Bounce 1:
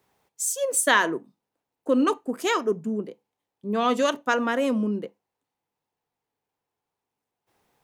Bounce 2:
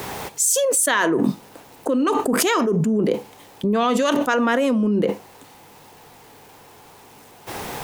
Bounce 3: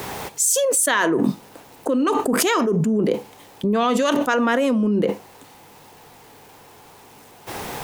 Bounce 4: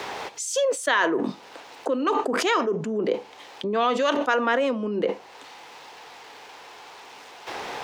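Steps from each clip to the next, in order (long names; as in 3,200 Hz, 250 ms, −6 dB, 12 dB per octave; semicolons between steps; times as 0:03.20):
envelope flattener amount 100%; level −1.5 dB
no processing that can be heard
three-way crossover with the lows and the highs turned down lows −14 dB, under 310 Hz, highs −23 dB, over 5,900 Hz; one half of a high-frequency compander encoder only; level −1.5 dB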